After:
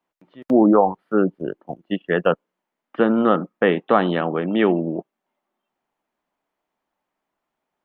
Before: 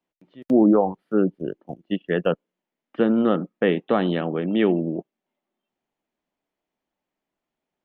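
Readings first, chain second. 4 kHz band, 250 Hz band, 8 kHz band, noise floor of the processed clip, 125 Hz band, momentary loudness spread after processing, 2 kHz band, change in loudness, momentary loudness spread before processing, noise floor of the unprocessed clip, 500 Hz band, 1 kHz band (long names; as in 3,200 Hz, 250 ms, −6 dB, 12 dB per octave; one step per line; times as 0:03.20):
+2.0 dB, +1.0 dB, can't be measured, −83 dBFS, +0.5 dB, 14 LU, +5.5 dB, +2.5 dB, 14 LU, below −85 dBFS, +3.0 dB, +7.5 dB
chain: parametric band 1,100 Hz +9 dB 1.7 octaves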